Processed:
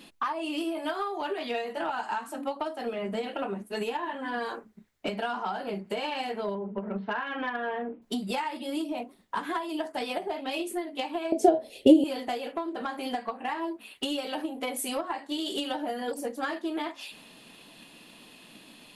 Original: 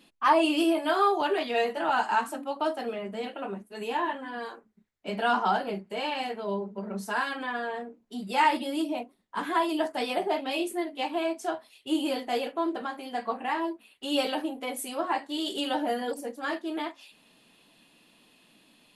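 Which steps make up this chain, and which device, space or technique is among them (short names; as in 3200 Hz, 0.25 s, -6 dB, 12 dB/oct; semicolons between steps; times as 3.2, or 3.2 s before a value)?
6.55–8.02 steep low-pass 3300 Hz 48 dB/oct; drum-bus smash (transient shaper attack +7 dB, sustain +2 dB; compressor 16:1, threshold -36 dBFS, peak gain reduction 24 dB; soft clip -28.5 dBFS, distortion -23 dB); 11.32–12.04 resonant low shelf 780 Hz +12.5 dB, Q 3; gain +8.5 dB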